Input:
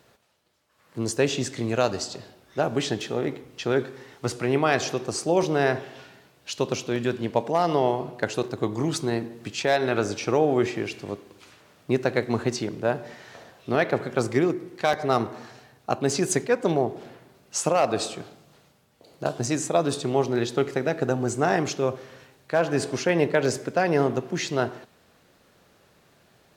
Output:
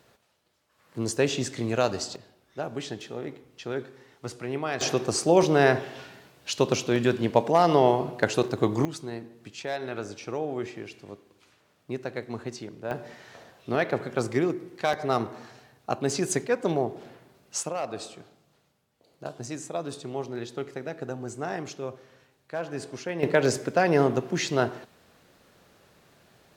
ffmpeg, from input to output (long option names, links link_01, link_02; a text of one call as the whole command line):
ffmpeg -i in.wav -af "asetnsamples=nb_out_samples=441:pad=0,asendcmd='2.16 volume volume -8.5dB;4.81 volume volume 2.5dB;8.85 volume volume -10dB;12.91 volume volume -3dB;17.63 volume volume -10dB;23.23 volume volume 0.5dB',volume=-1.5dB" out.wav